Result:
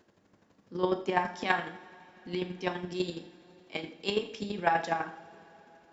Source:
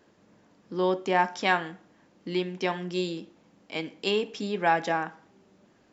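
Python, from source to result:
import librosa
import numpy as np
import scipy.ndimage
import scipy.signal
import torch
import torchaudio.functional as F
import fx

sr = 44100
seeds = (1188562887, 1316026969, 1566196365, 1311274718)

y = fx.chopper(x, sr, hz=12.0, depth_pct=65, duty_pct=20)
y = fx.rev_double_slope(y, sr, seeds[0], early_s=0.49, late_s=4.4, knee_db=-21, drr_db=6.0)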